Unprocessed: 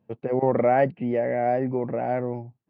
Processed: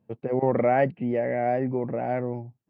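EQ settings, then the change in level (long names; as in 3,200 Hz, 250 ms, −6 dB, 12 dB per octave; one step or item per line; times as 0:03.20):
dynamic equaliser 2,400 Hz, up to +4 dB, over −37 dBFS, Q 1
low-shelf EQ 380 Hz +3.5 dB
−3.0 dB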